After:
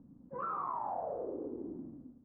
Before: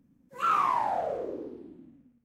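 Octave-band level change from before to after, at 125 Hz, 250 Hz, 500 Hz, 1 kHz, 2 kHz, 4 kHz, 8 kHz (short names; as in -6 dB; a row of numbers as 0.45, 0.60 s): -2.5 dB, -0.5 dB, -5.5 dB, -10.5 dB, -18.5 dB, under -35 dB, n/a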